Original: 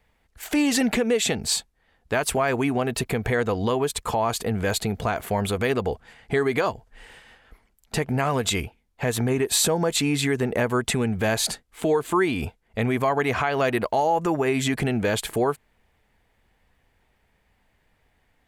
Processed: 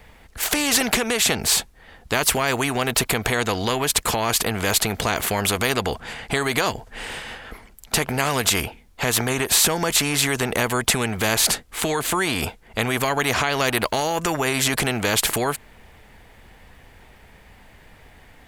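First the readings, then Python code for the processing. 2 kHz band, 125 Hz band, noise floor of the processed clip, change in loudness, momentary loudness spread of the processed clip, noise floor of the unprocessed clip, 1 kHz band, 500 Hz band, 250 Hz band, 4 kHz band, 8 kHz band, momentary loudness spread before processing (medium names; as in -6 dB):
+5.5 dB, -0.5 dB, -50 dBFS, +3.0 dB, 8 LU, -67 dBFS, +2.0 dB, -1.5 dB, -2.0 dB, +7.0 dB, +7.5 dB, 6 LU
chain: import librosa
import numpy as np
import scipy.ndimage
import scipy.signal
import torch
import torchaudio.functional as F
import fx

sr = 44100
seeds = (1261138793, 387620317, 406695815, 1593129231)

y = fx.spectral_comp(x, sr, ratio=2.0)
y = y * librosa.db_to_amplitude(6.5)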